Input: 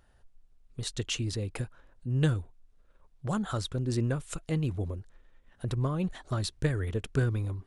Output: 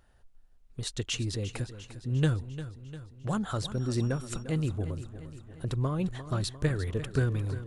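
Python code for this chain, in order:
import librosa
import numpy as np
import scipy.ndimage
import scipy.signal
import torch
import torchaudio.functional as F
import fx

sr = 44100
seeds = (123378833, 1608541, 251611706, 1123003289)

y = fx.echo_feedback(x, sr, ms=350, feedback_pct=58, wet_db=-13)
y = fx.dmg_tone(y, sr, hz=5600.0, level_db=-55.0, at=(3.74, 4.42), fade=0.02)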